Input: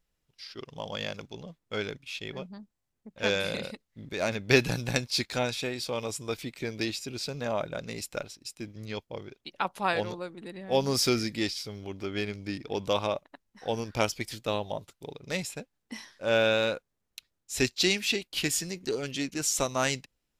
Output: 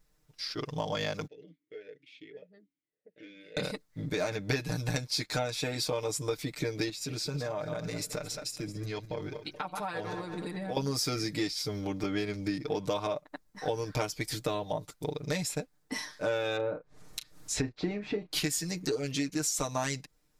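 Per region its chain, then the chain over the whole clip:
0:01.27–0:03.57: downward compressor, threshold −42 dBFS + formant filter swept between two vowels e-i 1.7 Hz
0:06.89–0:10.77: feedback delay that plays each chunk backwards 108 ms, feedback 48%, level −13 dB + downward compressor, threshold −39 dBFS
0:16.56–0:18.32: treble cut that deepens with the level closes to 1,000 Hz, closed at −26 dBFS + double-tracking delay 34 ms −12 dB + upward compression, threshold −42 dBFS
whole clip: parametric band 2,900 Hz −7 dB 0.53 octaves; comb filter 6.6 ms, depth 86%; downward compressor 6 to 1, threshold −35 dBFS; level +6 dB

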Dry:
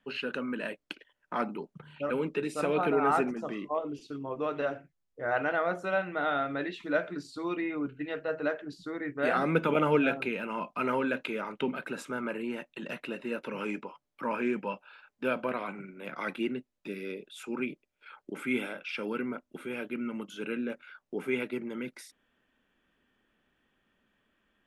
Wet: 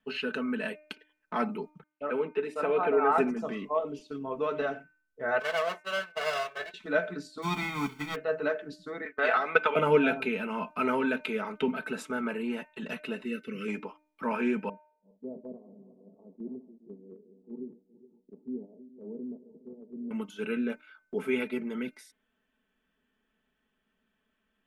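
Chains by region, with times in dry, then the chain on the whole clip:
0:01.83–0:03.18: noise gate −45 dBFS, range −36 dB + three-way crossover with the lows and the highs turned down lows −13 dB, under 280 Hz, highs −14 dB, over 2,700 Hz
0:05.39–0:06.74: lower of the sound and its delayed copy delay 1.8 ms + high-pass filter 590 Hz 6 dB per octave + downward expander −36 dBFS
0:07.42–0:08.14: spectral envelope flattened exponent 0.3 + low-pass filter 2,100 Hz 6 dB per octave + comb filter 0.9 ms, depth 89%
0:09.05–0:09.76: downward expander −38 dBFS + band-pass filter 670–4,100 Hz + transient designer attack +9 dB, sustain +1 dB
0:13.24–0:13.68: Butterworth band-reject 820 Hz, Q 0.66 + notch comb filter 810 Hz
0:14.69–0:20.11: feedback delay that plays each chunk backwards 210 ms, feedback 63%, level −9 dB + Gaussian smoothing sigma 19 samples + spectral tilt +3 dB per octave
whole clip: noise gate −44 dBFS, range −6 dB; comb filter 4.6 ms, depth 65%; hum removal 303.9 Hz, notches 9

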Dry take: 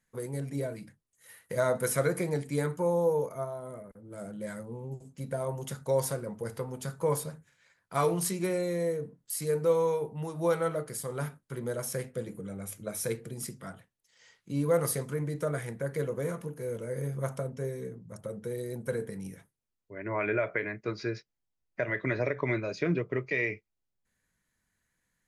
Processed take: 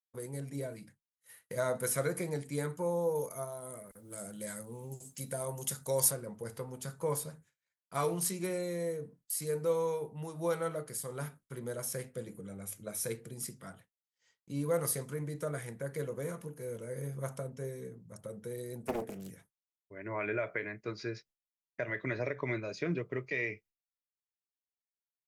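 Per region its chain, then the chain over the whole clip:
0:03.15–0:06.11: high-shelf EQ 4,300 Hz +11.5 dB + one half of a high-frequency compander encoder only
0:18.83–0:19.31: high-pass filter 100 Hz 24 dB per octave + dynamic equaliser 370 Hz, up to +4 dB, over −42 dBFS, Q 1 + highs frequency-modulated by the lows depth 0.81 ms
whole clip: downward expander −51 dBFS; high-shelf EQ 4,400 Hz +5.5 dB; level −5.5 dB

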